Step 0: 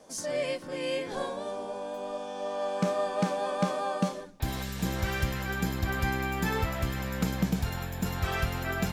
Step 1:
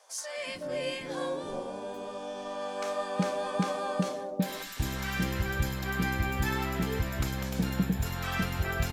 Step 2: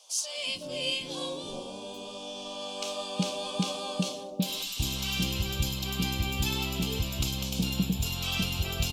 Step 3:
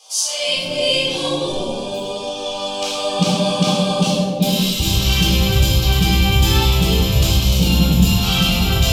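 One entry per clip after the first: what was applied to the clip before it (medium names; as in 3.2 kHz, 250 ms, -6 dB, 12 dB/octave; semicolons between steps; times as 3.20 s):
bands offset in time highs, lows 370 ms, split 670 Hz
FFT filter 220 Hz 0 dB, 500 Hz -4 dB, 1.1 kHz -4 dB, 1.8 kHz -17 dB, 2.8 kHz +11 dB, 14 kHz +4 dB
simulated room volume 600 m³, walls mixed, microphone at 3.9 m; trim +5 dB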